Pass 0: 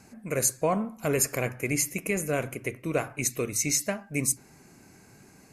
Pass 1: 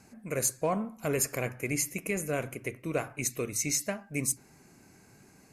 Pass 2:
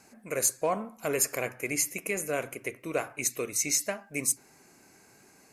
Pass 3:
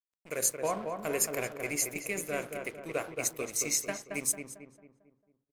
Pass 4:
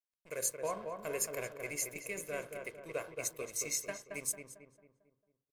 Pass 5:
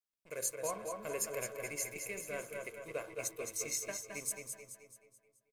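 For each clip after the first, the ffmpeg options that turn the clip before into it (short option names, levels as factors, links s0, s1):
-af "asoftclip=type=hard:threshold=0.168,volume=0.668"
-af "bass=f=250:g=-11,treble=f=4000:g=1,volume=1.26"
-filter_complex "[0:a]bandreject=f=45.36:t=h:w=4,bandreject=f=90.72:t=h:w=4,bandreject=f=136.08:t=h:w=4,bandreject=f=181.44:t=h:w=4,bandreject=f=226.8:t=h:w=4,bandreject=f=272.16:t=h:w=4,bandreject=f=317.52:t=h:w=4,bandreject=f=362.88:t=h:w=4,bandreject=f=408.24:t=h:w=4,bandreject=f=453.6:t=h:w=4,bandreject=f=498.96:t=h:w=4,bandreject=f=544.32:t=h:w=4,bandreject=f=589.68:t=h:w=4,bandreject=f=635.04:t=h:w=4,bandreject=f=680.4:t=h:w=4,bandreject=f=725.76:t=h:w=4,bandreject=f=771.12:t=h:w=4,bandreject=f=816.48:t=h:w=4,bandreject=f=861.84:t=h:w=4,bandreject=f=907.2:t=h:w=4,bandreject=f=952.56:t=h:w=4,bandreject=f=997.92:t=h:w=4,bandreject=f=1043.28:t=h:w=4,bandreject=f=1088.64:t=h:w=4,bandreject=f=1134:t=h:w=4,bandreject=f=1179.36:t=h:w=4,bandreject=f=1224.72:t=h:w=4,bandreject=f=1270.08:t=h:w=4,bandreject=f=1315.44:t=h:w=4,bandreject=f=1360.8:t=h:w=4,bandreject=f=1406.16:t=h:w=4,bandreject=f=1451.52:t=h:w=4,bandreject=f=1496.88:t=h:w=4,bandreject=f=1542.24:t=h:w=4,bandreject=f=1587.6:t=h:w=4,bandreject=f=1632.96:t=h:w=4,bandreject=f=1678.32:t=h:w=4,bandreject=f=1723.68:t=h:w=4,aeval=exprs='sgn(val(0))*max(abs(val(0))-0.00501,0)':c=same,asplit=2[s0][s1];[s1]adelay=224,lowpass=f=1700:p=1,volume=0.596,asplit=2[s2][s3];[s3]adelay=224,lowpass=f=1700:p=1,volume=0.47,asplit=2[s4][s5];[s5]adelay=224,lowpass=f=1700:p=1,volume=0.47,asplit=2[s6][s7];[s7]adelay=224,lowpass=f=1700:p=1,volume=0.47,asplit=2[s8][s9];[s9]adelay=224,lowpass=f=1700:p=1,volume=0.47,asplit=2[s10][s11];[s11]adelay=224,lowpass=f=1700:p=1,volume=0.47[s12];[s0][s2][s4][s6][s8][s10][s12]amix=inputs=7:normalize=0,volume=0.794"
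-af "aecho=1:1:1.9:0.4,volume=0.447"
-filter_complex "[0:a]bandreject=f=1900:w=26,asplit=2[s0][s1];[s1]aecho=0:1:215|430|645|860|1075:0.447|0.201|0.0905|0.0407|0.0183[s2];[s0][s2]amix=inputs=2:normalize=0,volume=0.794"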